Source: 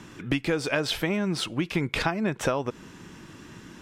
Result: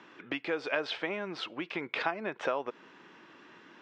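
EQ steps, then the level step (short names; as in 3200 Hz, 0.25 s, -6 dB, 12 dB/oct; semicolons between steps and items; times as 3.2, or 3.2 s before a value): BPF 440–3800 Hz; air absorption 91 m; -3.0 dB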